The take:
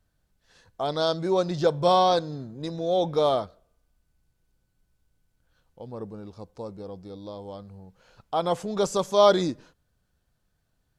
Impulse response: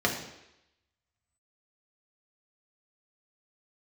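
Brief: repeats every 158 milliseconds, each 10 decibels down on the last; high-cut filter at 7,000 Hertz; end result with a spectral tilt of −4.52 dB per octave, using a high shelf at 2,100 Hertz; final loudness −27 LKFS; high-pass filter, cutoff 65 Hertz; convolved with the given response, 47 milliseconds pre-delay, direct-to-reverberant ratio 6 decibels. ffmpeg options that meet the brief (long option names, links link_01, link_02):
-filter_complex "[0:a]highpass=65,lowpass=7000,highshelf=frequency=2100:gain=8,aecho=1:1:158|316|474|632:0.316|0.101|0.0324|0.0104,asplit=2[link_01][link_02];[1:a]atrim=start_sample=2205,adelay=47[link_03];[link_02][link_03]afir=irnorm=-1:irlink=0,volume=-18dB[link_04];[link_01][link_04]amix=inputs=2:normalize=0,volume=-5.5dB"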